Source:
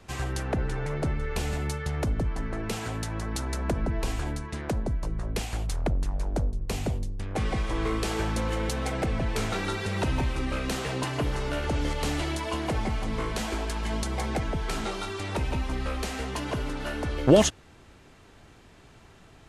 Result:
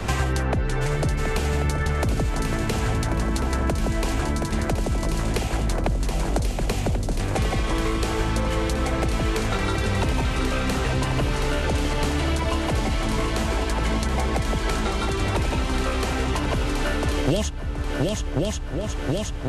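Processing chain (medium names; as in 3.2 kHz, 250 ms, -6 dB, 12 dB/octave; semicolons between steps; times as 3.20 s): multi-head delay 362 ms, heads second and third, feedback 46%, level -9 dB; three bands compressed up and down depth 100%; trim +3.5 dB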